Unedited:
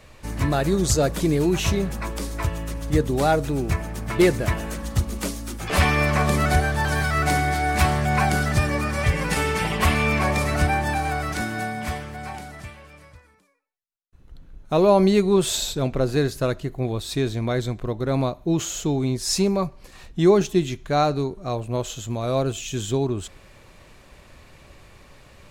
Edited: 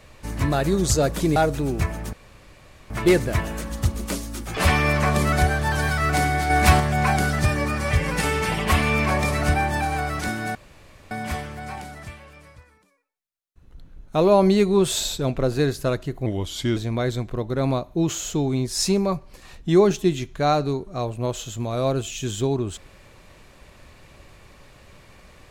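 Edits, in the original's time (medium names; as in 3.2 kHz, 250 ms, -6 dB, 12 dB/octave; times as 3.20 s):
1.36–3.26 s: delete
4.03 s: insert room tone 0.77 s
7.63–7.93 s: gain +4 dB
11.68 s: insert room tone 0.56 s
16.83–17.27 s: speed 87%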